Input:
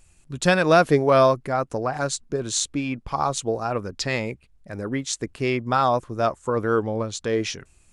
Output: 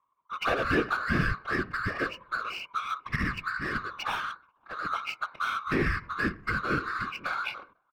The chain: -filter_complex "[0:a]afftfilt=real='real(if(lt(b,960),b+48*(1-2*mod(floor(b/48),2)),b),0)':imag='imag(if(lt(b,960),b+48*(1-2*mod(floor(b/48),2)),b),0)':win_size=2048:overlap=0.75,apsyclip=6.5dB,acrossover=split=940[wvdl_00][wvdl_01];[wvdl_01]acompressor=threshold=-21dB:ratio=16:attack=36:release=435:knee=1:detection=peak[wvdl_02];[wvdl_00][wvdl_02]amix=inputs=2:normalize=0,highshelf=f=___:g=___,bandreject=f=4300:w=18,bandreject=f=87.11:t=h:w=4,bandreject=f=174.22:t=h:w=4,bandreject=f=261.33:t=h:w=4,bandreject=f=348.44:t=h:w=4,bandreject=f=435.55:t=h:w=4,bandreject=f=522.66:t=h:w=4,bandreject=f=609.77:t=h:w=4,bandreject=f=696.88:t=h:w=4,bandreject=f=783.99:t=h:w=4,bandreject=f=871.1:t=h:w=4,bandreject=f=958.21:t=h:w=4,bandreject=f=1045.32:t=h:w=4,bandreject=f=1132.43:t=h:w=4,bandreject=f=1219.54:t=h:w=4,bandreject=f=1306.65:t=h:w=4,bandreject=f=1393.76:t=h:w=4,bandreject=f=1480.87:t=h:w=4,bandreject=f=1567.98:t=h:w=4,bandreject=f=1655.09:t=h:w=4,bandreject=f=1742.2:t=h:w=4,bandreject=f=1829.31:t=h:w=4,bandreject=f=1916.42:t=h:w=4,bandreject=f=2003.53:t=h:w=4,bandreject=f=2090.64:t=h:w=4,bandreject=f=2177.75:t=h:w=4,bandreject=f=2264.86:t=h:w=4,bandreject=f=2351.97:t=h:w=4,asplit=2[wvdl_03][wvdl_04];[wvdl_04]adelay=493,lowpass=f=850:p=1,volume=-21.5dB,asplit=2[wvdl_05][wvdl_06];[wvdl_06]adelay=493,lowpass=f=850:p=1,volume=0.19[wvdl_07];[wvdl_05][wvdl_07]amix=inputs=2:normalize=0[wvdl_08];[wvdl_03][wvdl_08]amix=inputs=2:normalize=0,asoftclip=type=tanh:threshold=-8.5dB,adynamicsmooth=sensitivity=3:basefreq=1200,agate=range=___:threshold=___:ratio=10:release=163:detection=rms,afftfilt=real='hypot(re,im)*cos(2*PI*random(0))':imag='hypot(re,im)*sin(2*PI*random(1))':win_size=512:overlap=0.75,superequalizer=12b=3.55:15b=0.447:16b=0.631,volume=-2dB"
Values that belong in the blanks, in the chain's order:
3500, -9, -14dB, -42dB